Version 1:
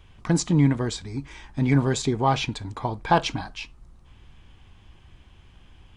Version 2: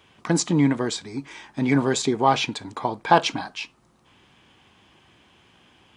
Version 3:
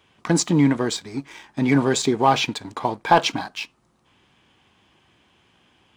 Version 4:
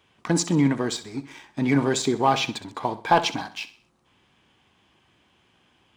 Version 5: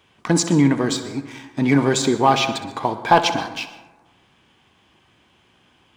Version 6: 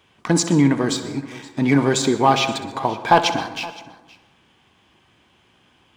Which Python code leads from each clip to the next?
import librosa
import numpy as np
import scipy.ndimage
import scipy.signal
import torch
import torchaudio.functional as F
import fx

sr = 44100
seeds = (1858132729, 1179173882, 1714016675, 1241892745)

y1 = scipy.signal.sosfilt(scipy.signal.butter(2, 220.0, 'highpass', fs=sr, output='sos'), x)
y1 = F.gain(torch.from_numpy(y1), 3.5).numpy()
y2 = fx.leveller(y1, sr, passes=1)
y2 = F.gain(torch.from_numpy(y2), -1.5).numpy()
y3 = fx.echo_feedback(y2, sr, ms=64, feedback_pct=40, wet_db=-15.0)
y3 = F.gain(torch.from_numpy(y3), -3.0).numpy()
y4 = fx.rev_plate(y3, sr, seeds[0], rt60_s=1.2, hf_ratio=0.3, predelay_ms=105, drr_db=12.5)
y4 = F.gain(torch.from_numpy(y4), 4.5).numpy()
y5 = y4 + 10.0 ** (-20.5 / 20.0) * np.pad(y4, (int(519 * sr / 1000.0), 0))[:len(y4)]